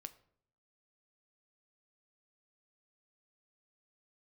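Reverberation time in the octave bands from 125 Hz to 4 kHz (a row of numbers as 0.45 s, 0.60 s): 0.90 s, 0.80 s, 0.70 s, 0.60 s, 0.50 s, 0.40 s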